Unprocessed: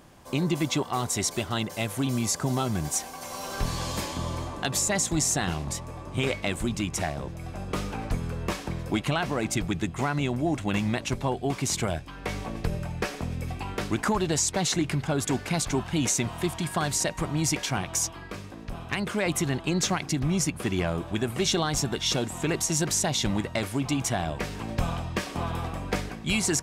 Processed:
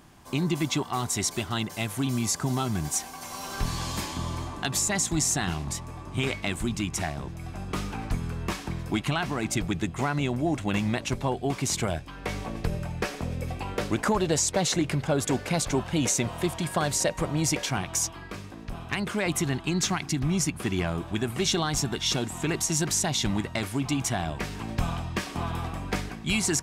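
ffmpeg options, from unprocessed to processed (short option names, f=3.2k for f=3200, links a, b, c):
-af "asetnsamples=n=441:p=0,asendcmd='9.51 equalizer g 0;13.25 equalizer g 7;17.69 equalizer g -3.5;19.53 equalizer g -12.5;20.22 equalizer g -6.5',equalizer=f=530:t=o:w=0.43:g=-9"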